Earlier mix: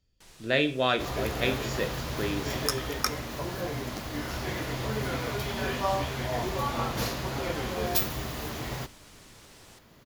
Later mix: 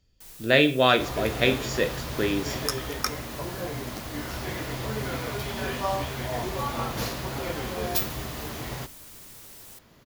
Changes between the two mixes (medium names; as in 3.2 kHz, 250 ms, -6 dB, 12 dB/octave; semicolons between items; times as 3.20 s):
speech +6.0 dB; first sound: remove distance through air 68 m